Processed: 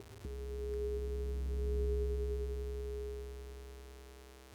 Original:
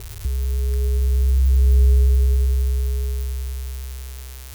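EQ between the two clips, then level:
resonant band-pass 290 Hz, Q 1.2
spectral tilt +2.5 dB per octave
+2.0 dB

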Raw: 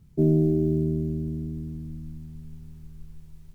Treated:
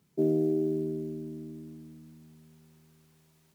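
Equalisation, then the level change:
high-pass filter 340 Hz 12 dB per octave
0.0 dB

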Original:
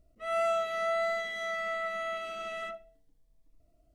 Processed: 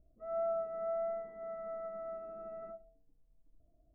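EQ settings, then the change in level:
Bessel low-pass filter 720 Hz, order 6
−2.0 dB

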